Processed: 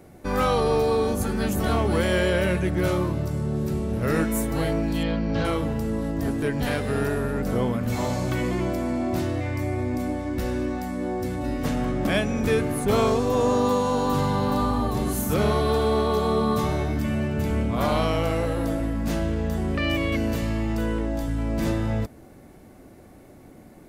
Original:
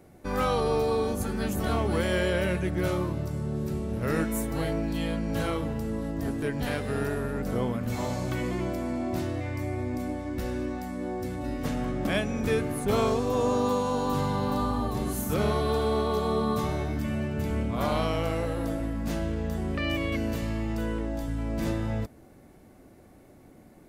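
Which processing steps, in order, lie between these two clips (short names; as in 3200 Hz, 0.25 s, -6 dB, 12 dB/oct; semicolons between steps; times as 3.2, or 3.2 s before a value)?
5.03–5.45 Chebyshev low-pass 4900 Hz, order 3; in parallel at -8.5 dB: soft clip -27 dBFS, distortion -11 dB; on the sum: gain +2.5 dB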